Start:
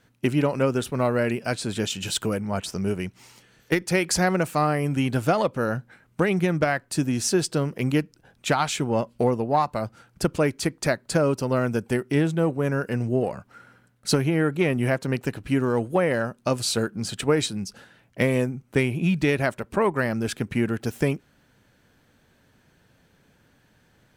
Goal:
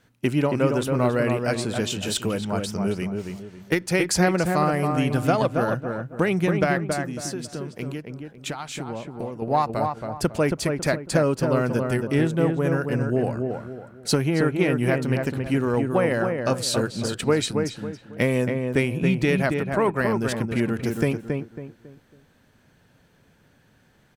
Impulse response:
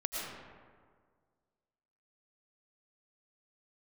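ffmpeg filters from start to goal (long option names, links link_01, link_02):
-filter_complex "[0:a]asettb=1/sr,asplit=3[link_01][link_02][link_03];[link_01]atrim=end=6.804[link_04];[link_02]atrim=start=6.8:end=9.42,asetpts=PTS-STARTPTS,afade=type=in:duration=0.004:curve=qsin,afade=type=out:start_time=2.616:duration=0.004:curve=qsin,acompressor=threshold=-30dB:ratio=6[link_05];[link_03]atrim=start=9.416[link_06];[link_04][link_05]acrossfade=duration=0.004:curve1=hsin:curve2=qsin[link_07];[link_07][link_06]acrossfade=duration=0.004:curve1=qsin:curve2=hsin,asplit=2[link_08][link_09];[link_09]adelay=275,lowpass=frequency=1700:poles=1,volume=-4dB,asplit=2[link_10][link_11];[link_11]adelay=275,lowpass=frequency=1700:poles=1,volume=0.34,asplit=2[link_12][link_13];[link_13]adelay=275,lowpass=frequency=1700:poles=1,volume=0.34,asplit=2[link_14][link_15];[link_15]adelay=275,lowpass=frequency=1700:poles=1,volume=0.34[link_16];[link_08][link_10][link_12][link_14][link_16]amix=inputs=5:normalize=0"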